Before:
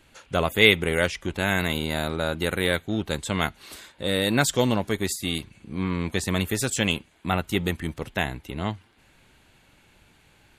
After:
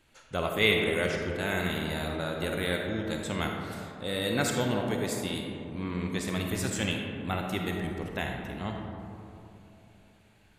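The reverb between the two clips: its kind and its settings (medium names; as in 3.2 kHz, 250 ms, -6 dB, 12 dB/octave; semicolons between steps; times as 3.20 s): algorithmic reverb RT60 3 s, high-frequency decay 0.3×, pre-delay 10 ms, DRR 1 dB; trim -8 dB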